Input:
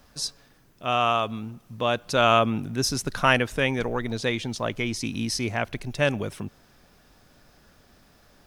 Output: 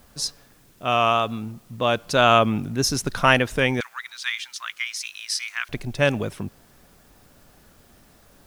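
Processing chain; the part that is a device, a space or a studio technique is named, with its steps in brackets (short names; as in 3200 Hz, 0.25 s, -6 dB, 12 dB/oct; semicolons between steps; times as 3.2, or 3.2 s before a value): 3.8–5.69 steep high-pass 1200 Hz 36 dB/oct; plain cassette with noise reduction switched in (mismatched tape noise reduction decoder only; wow and flutter; white noise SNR 35 dB); gain +3 dB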